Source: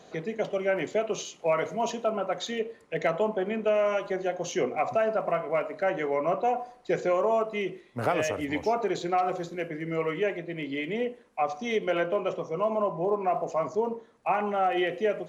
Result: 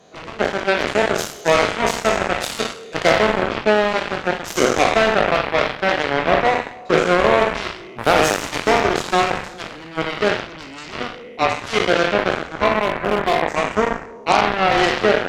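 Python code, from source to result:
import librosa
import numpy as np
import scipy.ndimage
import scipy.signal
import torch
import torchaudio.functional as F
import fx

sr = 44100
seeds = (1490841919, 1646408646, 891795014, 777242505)

y = fx.spec_trails(x, sr, decay_s=1.53)
y = fx.cheby_harmonics(y, sr, harmonics=(5, 7), levels_db=(-30, -13), full_scale_db=-10.5)
y = fx.clip_hard(y, sr, threshold_db=-18.0, at=(12.82, 13.42))
y = F.gain(torch.from_numpy(y), 8.0).numpy()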